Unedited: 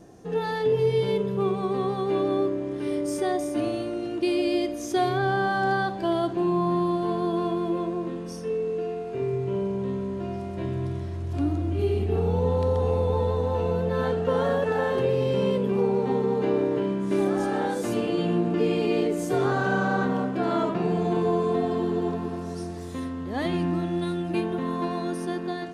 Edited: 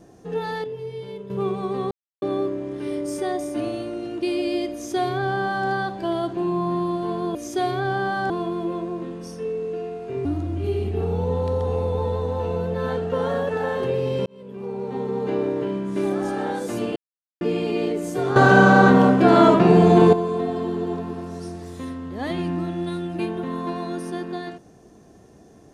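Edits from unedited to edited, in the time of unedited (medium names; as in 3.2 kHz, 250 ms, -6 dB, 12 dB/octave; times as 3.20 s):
0.64–1.30 s: gain -10.5 dB
1.91–2.22 s: mute
4.73–5.68 s: copy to 7.35 s
9.30–11.40 s: delete
15.41–16.47 s: fade in
18.11–18.56 s: mute
19.51–21.28 s: gain +11.5 dB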